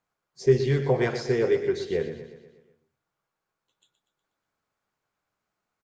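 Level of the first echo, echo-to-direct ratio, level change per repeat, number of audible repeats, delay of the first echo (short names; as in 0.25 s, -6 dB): -10.5 dB, -9.0 dB, -5.5 dB, 5, 0.121 s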